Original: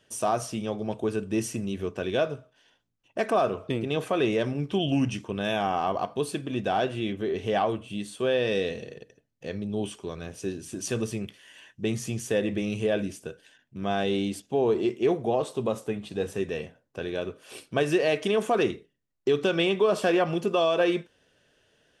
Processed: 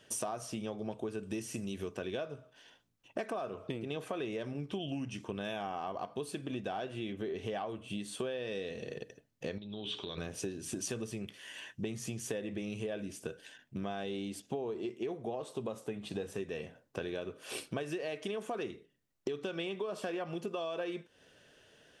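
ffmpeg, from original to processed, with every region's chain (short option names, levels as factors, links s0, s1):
-filter_complex "[0:a]asettb=1/sr,asplit=3[s0][s1][s2];[s0]atrim=end=1.234[s3];[s1]atrim=start=1.23:end=1.97,asetpts=PTS-STARTPTS,afade=t=in:d=0.004:c=qsin,afade=t=out:st=0.736:d=0.004:c=qsin,acrossover=split=3800[s4][s5];[s5]acompressor=threshold=0.00794:ratio=4:attack=1:release=60[s6];[s4][s6]amix=inputs=2:normalize=0,highshelf=f=4000:g=9[s7];[s2]atrim=start=1.966[s8];[s3][s7]acrossfade=d=0.004:c1=hsin:c2=qsin[s9];[s9][s8]acrossfade=d=0.004:c1=qsin:c2=hsin,asettb=1/sr,asplit=3[s10][s11][s12];[s10]atrim=end=9.584[s13];[s11]atrim=start=9.58:end=10.18,asetpts=PTS-STARTPTS,afade=t=in:d=0.004:c=qsin,afade=t=out:st=0.596:d=0.004:c=qsin,bandreject=f=60:t=h:w=6,bandreject=f=120:t=h:w=6,bandreject=f=180:t=h:w=6,bandreject=f=240:t=h:w=6,bandreject=f=300:t=h:w=6,bandreject=f=360:t=h:w=6,bandreject=f=420:t=h:w=6,acompressor=threshold=0.00794:ratio=5:attack=3.2:release=140:knee=1:detection=peak,lowpass=f=3700:t=q:w=11[s14];[s12]atrim=start=10.176[s15];[s13][s14]acrossfade=d=0.004:c1=hsin:c2=qsin[s16];[s16][s15]acrossfade=d=0.004:c1=qsin:c2=hsin,acompressor=threshold=0.0126:ratio=12,lowshelf=f=71:g=-6,volume=1.5"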